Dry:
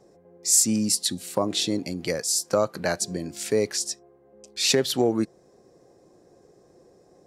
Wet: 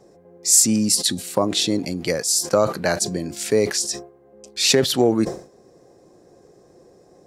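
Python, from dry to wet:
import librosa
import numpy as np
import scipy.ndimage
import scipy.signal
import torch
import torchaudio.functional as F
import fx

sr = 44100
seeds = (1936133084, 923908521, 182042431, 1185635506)

y = fx.sustainer(x, sr, db_per_s=130.0)
y = F.gain(torch.from_numpy(y), 4.5).numpy()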